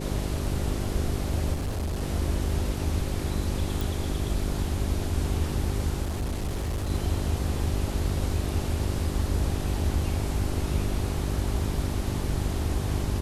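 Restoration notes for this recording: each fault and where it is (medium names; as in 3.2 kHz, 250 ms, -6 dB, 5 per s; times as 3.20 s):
hum 50 Hz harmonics 8 -32 dBFS
1.53–2.03 s: clipped -26 dBFS
3.81 s: pop
6.02–6.91 s: clipped -25.5 dBFS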